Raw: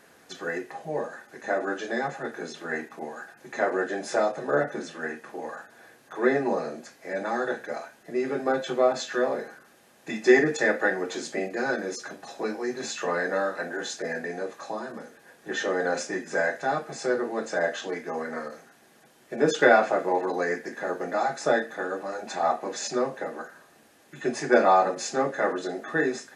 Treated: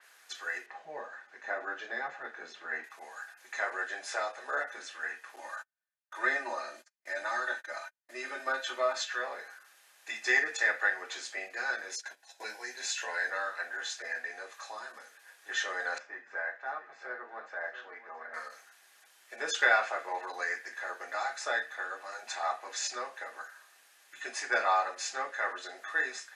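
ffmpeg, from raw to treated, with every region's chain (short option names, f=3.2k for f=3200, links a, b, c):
-filter_complex "[0:a]asettb=1/sr,asplit=3[a][b][c];[a]atrim=end=0.664[d];[b]atrim=start=0.66:end=2.84,asetpts=PTS-STARTPTS,afade=t=in:d=0.004:c=qsin,afade=t=out:st=2.176:d=0.004:c=qsin,lowpass=8.8k,aemphasis=mode=reproduction:type=riaa[e];[c]atrim=start=2.836[f];[d][e]acrossfade=d=0.004:c1=hsin:c2=qsin[g];[g][f]acrossfade=d=0.004:c1=qsin:c2=hsin,asettb=1/sr,asplit=3[h][i][j];[h]atrim=end=5.364[k];[i]atrim=start=5.36:end=9.05,asetpts=PTS-STARTPTS,afade=t=in:d=0.004:c=qsin,afade=t=out:st=3.686:d=0.004:c=qsin,aecho=1:1:3.3:0.89,atrim=end_sample=162729,agate=range=-43dB:threshold=-40dB:ratio=16:release=100:detection=peak[l];[j]atrim=start=9.046[m];[k][l]acrossfade=d=0.004:c1=hsin:c2=qsin[n];[n][m]acrossfade=d=0.004:c1=qsin:c2=hsin,asettb=1/sr,asplit=3[o][p][q];[o]atrim=end=11.894[r];[p]atrim=start=11.89:end=13.3,asetpts=PTS-STARTPTS,afade=t=in:d=0.004:c=qsin,afade=t=out:st=1.406:d=0.004:c=qsin,agate=range=-13dB:threshold=-40dB:ratio=16:release=100:detection=peak,asuperstop=centerf=1200:order=8:qfactor=5.8,highshelf=f=5.8k:g=5.5[s];[q]atrim=start=13.296[t];[r][s]acrossfade=d=0.004:c1=hsin:c2=qsin[u];[u][t]acrossfade=d=0.004:c1=qsin:c2=hsin,asettb=1/sr,asplit=3[v][w][x];[v]atrim=end=15.984[y];[w]atrim=start=15.98:end=18.34,asetpts=PTS-STARTPTS,afade=t=in:d=0.004:c=qsin,afade=t=out:st=2.356:d=0.004:c=qsin,lowpass=1.4k,equalizer=f=400:t=o:w=2.7:g=-3.5,aecho=1:1:679:0.237,atrim=end_sample=104076[z];[x]atrim=start=18.336[aa];[y][z]acrossfade=d=0.004:c1=hsin:c2=qsin[ab];[ab][aa]acrossfade=d=0.004:c1=qsin:c2=hsin,highpass=1.3k,adynamicequalizer=threshold=0.00355:dfrequency=4500:dqfactor=0.7:tfrequency=4500:tqfactor=0.7:attack=5:release=100:ratio=0.375:range=3:mode=cutabove:tftype=highshelf"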